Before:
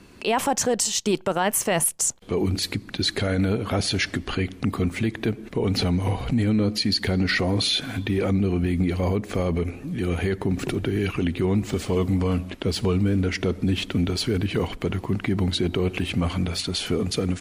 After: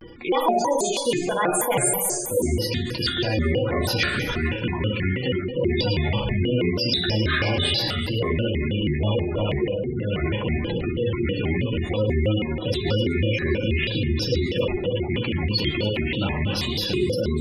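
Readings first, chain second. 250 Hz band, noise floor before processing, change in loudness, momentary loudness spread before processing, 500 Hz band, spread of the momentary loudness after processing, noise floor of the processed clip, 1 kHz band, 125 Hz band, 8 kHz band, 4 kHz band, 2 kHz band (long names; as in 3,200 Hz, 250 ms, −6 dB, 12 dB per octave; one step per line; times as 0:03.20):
−1.5 dB, −43 dBFS, +0.5 dB, 5 LU, +2.5 dB, 4 LU, −29 dBFS, +2.0 dB, +0.5 dB, −2.0 dB, +1.5 dB, +3.0 dB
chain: loose part that buzzes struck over −24 dBFS, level −18 dBFS
parametric band 6,300 Hz −14.5 dB 0.33 octaves
tuned comb filter 420 Hz, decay 0.18 s, harmonics all, mix 80%
feedback delay network reverb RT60 1.8 s, low-frequency decay 0.75×, high-frequency decay 0.6×, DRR −2 dB
reversed playback
upward compression, threshold −26 dBFS
reversed playback
gate on every frequency bin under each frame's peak −20 dB strong
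echo through a band-pass that steps 123 ms, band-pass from 4,200 Hz, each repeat 0.7 octaves, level −6 dB
dynamic equaliser 330 Hz, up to −7 dB, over −46 dBFS, Q 2.6
pitch modulation by a square or saw wave square 3.1 Hz, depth 250 cents
level +8.5 dB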